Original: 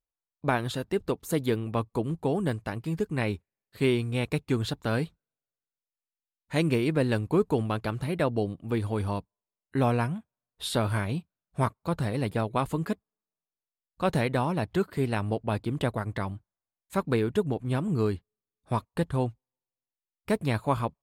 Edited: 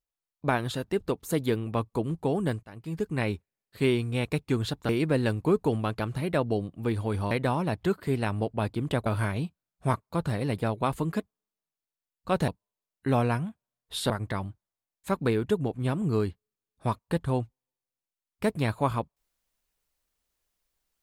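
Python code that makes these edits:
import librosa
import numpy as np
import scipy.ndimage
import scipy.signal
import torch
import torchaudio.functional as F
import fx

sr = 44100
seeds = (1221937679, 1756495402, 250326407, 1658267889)

y = fx.edit(x, sr, fx.fade_in_from(start_s=2.63, length_s=0.45, floor_db=-23.0),
    fx.cut(start_s=4.89, length_s=1.86),
    fx.swap(start_s=9.17, length_s=1.62, other_s=14.21, other_length_s=1.75), tone=tone)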